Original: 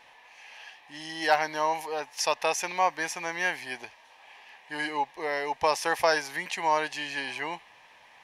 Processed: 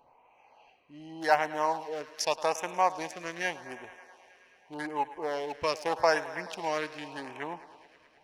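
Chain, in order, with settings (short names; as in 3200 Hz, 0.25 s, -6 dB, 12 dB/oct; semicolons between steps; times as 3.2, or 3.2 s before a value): Wiener smoothing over 25 samples; thinning echo 0.107 s, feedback 81%, high-pass 190 Hz, level -17 dB; LFO notch sine 0.84 Hz 800–4800 Hz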